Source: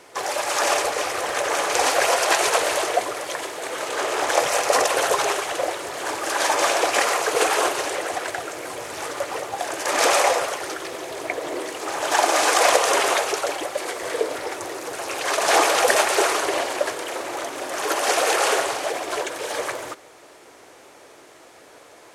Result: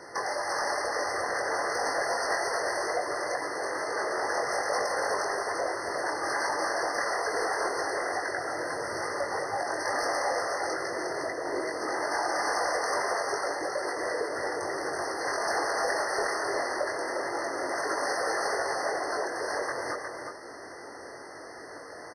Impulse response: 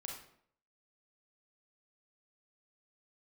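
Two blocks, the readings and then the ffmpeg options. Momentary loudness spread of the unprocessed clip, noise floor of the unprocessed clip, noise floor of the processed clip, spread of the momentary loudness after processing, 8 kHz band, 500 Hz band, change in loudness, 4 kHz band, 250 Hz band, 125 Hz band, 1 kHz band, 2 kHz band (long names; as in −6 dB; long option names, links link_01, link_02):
12 LU, −48 dBFS, −44 dBFS, 5 LU, −12.5 dB, −7.0 dB, −8.0 dB, −12.0 dB, −5.5 dB, −3.5 dB, −7.0 dB, −6.0 dB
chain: -af "lowpass=9000,equalizer=frequency=2300:width=3.1:gain=12.5,bandreject=frequency=2100:width=13,acompressor=threshold=-33dB:ratio=2.5,flanger=delay=20:depth=2.5:speed=2.3,asoftclip=type=tanh:threshold=-25.5dB,aecho=1:1:359:0.531,afftfilt=real='re*eq(mod(floor(b*sr/1024/2100),2),0)':imag='im*eq(mod(floor(b*sr/1024/2100),2),0)':win_size=1024:overlap=0.75,volume=6dB"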